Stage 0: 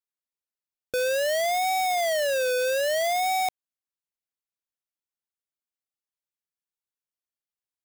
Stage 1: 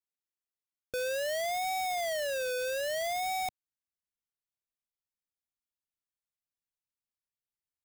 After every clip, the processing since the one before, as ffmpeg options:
-af "asubboost=boost=3:cutoff=210,volume=0.447"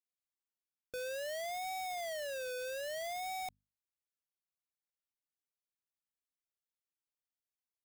-af "bandreject=f=50:t=h:w=6,bandreject=f=100:t=h:w=6,bandreject=f=150:t=h:w=6,bandreject=f=200:t=h:w=6,bandreject=f=250:t=h:w=6,volume=0.422"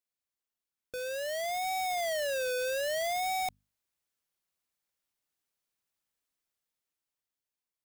-af "dynaudnorm=f=250:g=11:m=2.24,volume=1.19"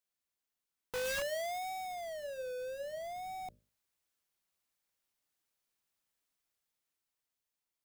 -af "aeval=exprs='(mod(59.6*val(0)+1,2)-1)/59.6':c=same,bandreject=f=60:t=h:w=6,bandreject=f=120:t=h:w=6,bandreject=f=180:t=h:w=6,bandreject=f=240:t=h:w=6,bandreject=f=300:t=h:w=6,bandreject=f=360:t=h:w=6,bandreject=f=420:t=h:w=6,bandreject=f=480:t=h:w=6,bandreject=f=540:t=h:w=6,bandreject=f=600:t=h:w=6,volume=1.12"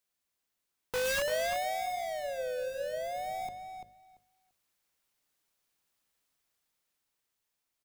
-filter_complex "[0:a]asplit=2[s0][s1];[s1]adelay=340,lowpass=f=4800:p=1,volume=0.473,asplit=2[s2][s3];[s3]adelay=340,lowpass=f=4800:p=1,volume=0.16,asplit=2[s4][s5];[s5]adelay=340,lowpass=f=4800:p=1,volume=0.16[s6];[s0][s2][s4][s6]amix=inputs=4:normalize=0,volume=1.78"

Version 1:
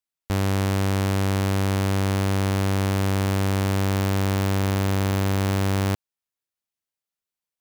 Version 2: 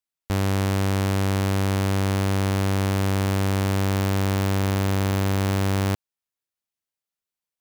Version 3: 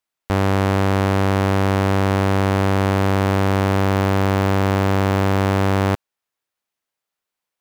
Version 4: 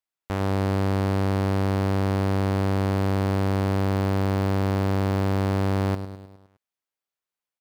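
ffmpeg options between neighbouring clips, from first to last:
-af anull
-filter_complex "[0:a]crystalizer=i=1:c=0,asplit=2[s0][s1];[s1]highpass=f=720:p=1,volume=2.82,asoftclip=type=tanh:threshold=0.422[s2];[s0][s2]amix=inputs=2:normalize=0,lowpass=f=1300:p=1,volume=0.501,volume=2.66"
-af "aecho=1:1:103|206|309|412|515|618:0.282|0.155|0.0853|0.0469|0.0258|0.0142,volume=0.376"

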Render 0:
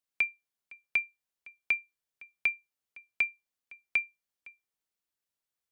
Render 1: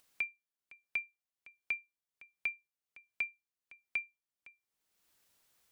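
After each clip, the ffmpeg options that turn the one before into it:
-af "acompressor=mode=upward:threshold=0.00562:ratio=2.5,volume=0.422"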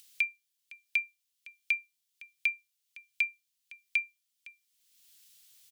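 -af "firequalizer=gain_entry='entry(170,0);entry(670,-12);entry(1700,1);entry(3100,13)':delay=0.05:min_phase=1"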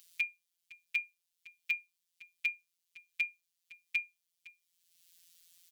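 -af "afftfilt=real='hypot(re,im)*cos(PI*b)':imag='0':win_size=1024:overlap=0.75"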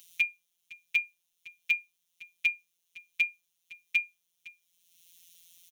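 -af "aecho=1:1:5.5:0.64,volume=1.58"

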